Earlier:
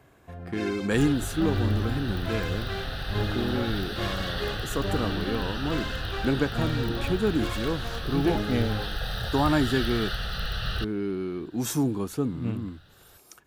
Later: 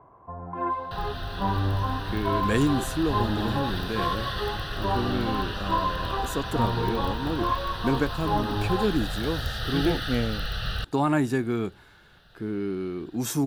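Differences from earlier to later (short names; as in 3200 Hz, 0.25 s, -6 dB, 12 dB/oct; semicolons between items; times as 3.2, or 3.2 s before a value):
speech: entry +1.60 s; first sound: add synth low-pass 1000 Hz, resonance Q 10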